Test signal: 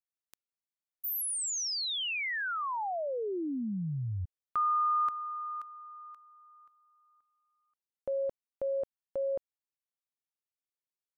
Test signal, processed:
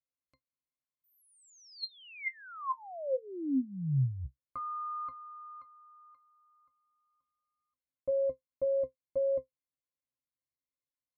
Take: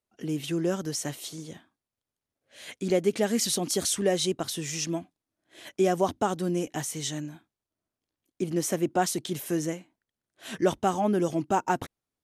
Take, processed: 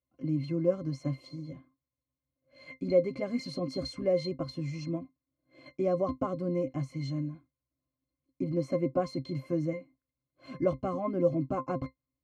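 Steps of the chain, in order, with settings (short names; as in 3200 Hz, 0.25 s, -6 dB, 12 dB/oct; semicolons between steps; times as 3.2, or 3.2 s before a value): high shelf 7600 Hz -5 dB; octave resonator C, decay 0.11 s; gain +8.5 dB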